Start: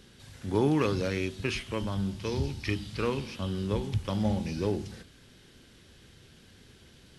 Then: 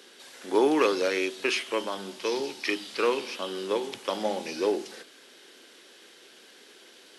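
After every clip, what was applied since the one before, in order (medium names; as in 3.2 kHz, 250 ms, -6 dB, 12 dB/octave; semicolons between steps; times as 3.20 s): high-pass 340 Hz 24 dB/octave; trim +6.5 dB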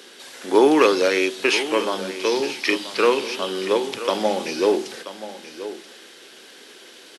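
delay 981 ms -13.5 dB; trim +7.5 dB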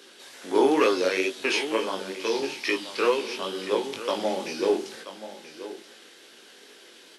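chorus 2.2 Hz, delay 17 ms, depth 5.5 ms; trim -2.5 dB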